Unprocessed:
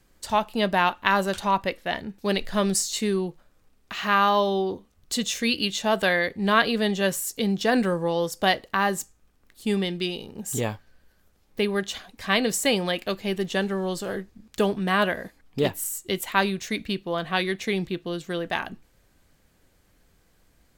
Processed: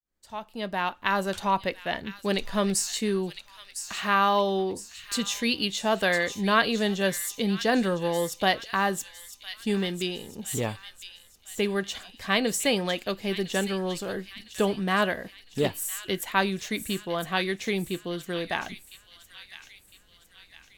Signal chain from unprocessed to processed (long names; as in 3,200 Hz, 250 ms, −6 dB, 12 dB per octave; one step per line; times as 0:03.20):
fade in at the beginning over 1.44 s
pitch vibrato 0.41 Hz 15 cents
on a send: delay with a high-pass on its return 1,007 ms, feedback 48%, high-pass 2,500 Hz, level −8.5 dB
on the sum: level −2 dB